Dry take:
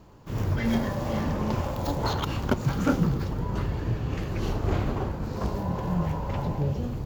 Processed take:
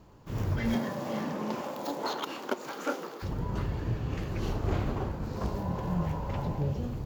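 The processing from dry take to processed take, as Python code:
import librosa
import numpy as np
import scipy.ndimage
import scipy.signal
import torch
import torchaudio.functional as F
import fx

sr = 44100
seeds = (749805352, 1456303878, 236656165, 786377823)

y = fx.highpass(x, sr, hz=fx.line((0.74, 140.0), (3.22, 410.0)), slope=24, at=(0.74, 3.22), fade=0.02)
y = F.gain(torch.from_numpy(y), -3.5).numpy()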